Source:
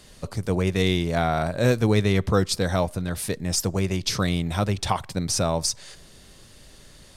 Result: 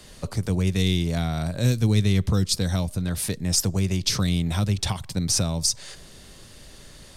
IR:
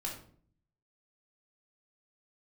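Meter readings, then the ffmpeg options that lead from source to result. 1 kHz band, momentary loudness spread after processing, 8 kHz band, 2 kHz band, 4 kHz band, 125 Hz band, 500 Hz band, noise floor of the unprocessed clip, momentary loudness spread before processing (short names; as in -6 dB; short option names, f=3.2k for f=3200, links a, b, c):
-9.0 dB, 6 LU, +3.0 dB, -5.0 dB, +2.0 dB, +2.5 dB, -7.5 dB, -50 dBFS, 6 LU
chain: -filter_complex "[0:a]acrossover=split=240|3000[a][b][c];[b]acompressor=threshold=-36dB:ratio=6[d];[a][d][c]amix=inputs=3:normalize=0,volume=3dB"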